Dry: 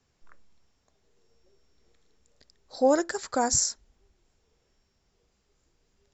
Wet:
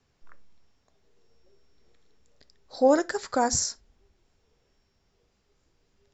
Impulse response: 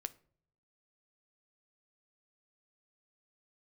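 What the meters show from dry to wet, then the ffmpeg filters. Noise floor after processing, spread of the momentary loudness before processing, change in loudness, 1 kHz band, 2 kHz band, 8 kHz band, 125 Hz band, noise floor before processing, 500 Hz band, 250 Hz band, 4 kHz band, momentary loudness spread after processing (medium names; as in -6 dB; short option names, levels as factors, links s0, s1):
-71 dBFS, 7 LU, +0.5 dB, +1.5 dB, +1.5 dB, no reading, +2.0 dB, -73 dBFS, +2.0 dB, +1.5 dB, -0.5 dB, 7 LU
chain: -filter_complex "[0:a]asplit=2[s0][s1];[1:a]atrim=start_sample=2205,afade=t=out:st=0.14:d=0.01,atrim=end_sample=6615,lowpass=7000[s2];[s1][s2]afir=irnorm=-1:irlink=0,volume=2.51[s3];[s0][s3]amix=inputs=2:normalize=0,volume=0.422"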